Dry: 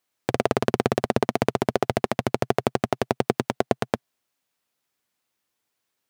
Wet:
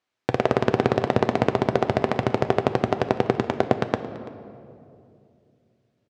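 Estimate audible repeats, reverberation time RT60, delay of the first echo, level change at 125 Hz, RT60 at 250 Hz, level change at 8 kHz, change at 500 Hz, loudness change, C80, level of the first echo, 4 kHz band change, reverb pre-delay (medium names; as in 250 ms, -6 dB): 1, 2.5 s, 335 ms, +3.0 dB, 3.1 s, no reading, +2.0 dB, +2.0 dB, 11.5 dB, -19.5 dB, -1.0 dB, 7 ms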